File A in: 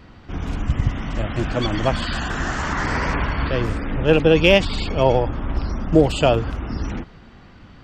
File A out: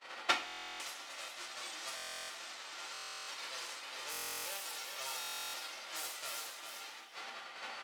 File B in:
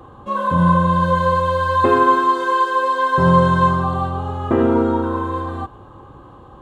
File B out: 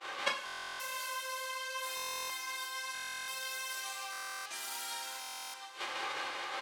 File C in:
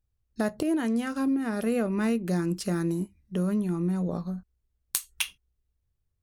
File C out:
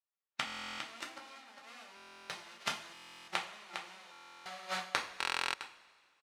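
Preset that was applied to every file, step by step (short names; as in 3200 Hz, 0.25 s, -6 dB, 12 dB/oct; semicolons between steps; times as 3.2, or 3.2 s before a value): spectral whitening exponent 0.1; HPF 580 Hz 12 dB/oct; expander -36 dBFS; low-pass opened by the level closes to 2500 Hz, open at -11.5 dBFS; notch 1600 Hz, Q 20; limiter -10 dBFS; flipped gate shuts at -27 dBFS, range -35 dB; on a send: echo 0.405 s -7 dB; on the sum: two-slope reverb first 0.31 s, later 2 s, from -17 dB, DRR -1 dB; stuck buffer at 0.45/1.95/2.93/4.11/5.19, samples 1024, times 14; gain +10.5 dB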